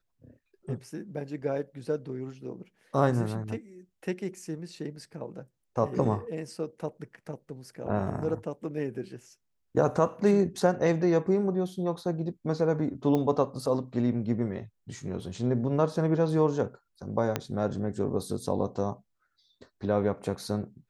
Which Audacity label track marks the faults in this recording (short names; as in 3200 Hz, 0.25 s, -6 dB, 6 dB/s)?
13.150000	13.150000	pop -17 dBFS
17.360000	17.360000	pop -12 dBFS